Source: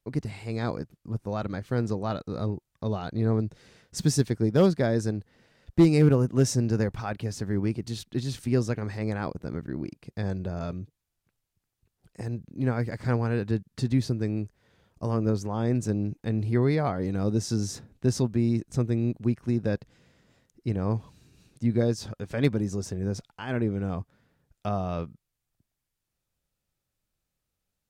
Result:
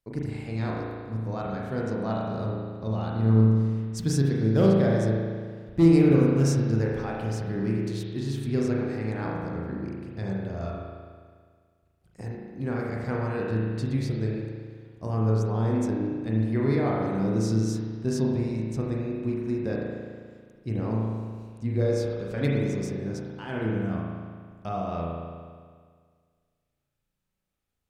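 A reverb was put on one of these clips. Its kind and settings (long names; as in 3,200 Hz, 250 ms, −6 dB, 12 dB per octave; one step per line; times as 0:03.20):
spring reverb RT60 1.8 s, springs 36 ms, chirp 75 ms, DRR −3.5 dB
level −4.5 dB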